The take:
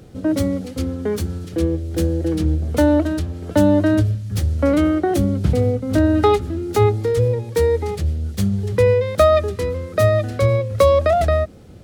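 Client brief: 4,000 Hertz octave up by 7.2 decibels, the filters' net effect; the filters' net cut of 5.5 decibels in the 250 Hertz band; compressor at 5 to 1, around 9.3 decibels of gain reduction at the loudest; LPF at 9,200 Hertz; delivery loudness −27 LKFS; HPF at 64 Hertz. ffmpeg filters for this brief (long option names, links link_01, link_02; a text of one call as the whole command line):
ffmpeg -i in.wav -af "highpass=64,lowpass=9200,equalizer=frequency=250:width_type=o:gain=-7.5,equalizer=frequency=4000:width_type=o:gain=8.5,acompressor=threshold=-20dB:ratio=5,volume=-1.5dB" out.wav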